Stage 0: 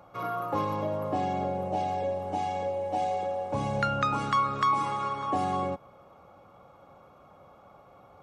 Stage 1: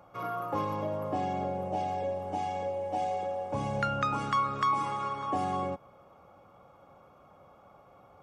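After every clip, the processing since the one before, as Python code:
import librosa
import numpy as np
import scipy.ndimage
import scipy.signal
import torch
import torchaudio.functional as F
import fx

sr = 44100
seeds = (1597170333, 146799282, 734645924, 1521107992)

y = fx.notch(x, sr, hz=4000.0, q=10.0)
y = y * librosa.db_to_amplitude(-2.5)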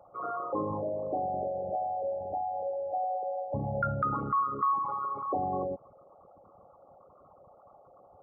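y = fx.envelope_sharpen(x, sr, power=3.0)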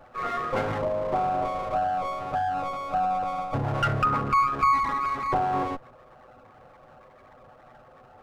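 y = fx.lower_of_two(x, sr, delay_ms=8.0)
y = fx.doppler_dist(y, sr, depth_ms=0.13)
y = y * librosa.db_to_amplitude(7.0)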